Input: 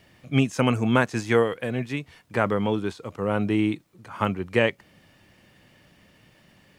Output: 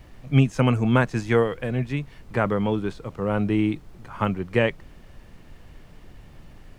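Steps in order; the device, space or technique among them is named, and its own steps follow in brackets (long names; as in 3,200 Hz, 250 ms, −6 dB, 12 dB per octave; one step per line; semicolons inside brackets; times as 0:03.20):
car interior (parametric band 140 Hz +6.5 dB 0.65 octaves; high-shelf EQ 3,700 Hz −6 dB; brown noise bed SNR 19 dB)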